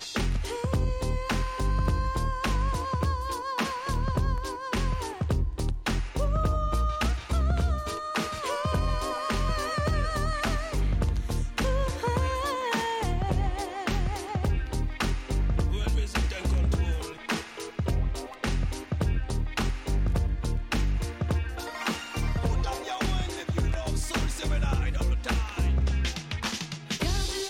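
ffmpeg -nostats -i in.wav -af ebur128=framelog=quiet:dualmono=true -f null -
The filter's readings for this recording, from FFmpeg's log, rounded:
Integrated loudness:
  I:         -26.4 LUFS
  Threshold: -36.4 LUFS
Loudness range:
  LRA:         1.6 LU
  Threshold: -46.4 LUFS
  LRA low:   -27.3 LUFS
  LRA high:  -25.7 LUFS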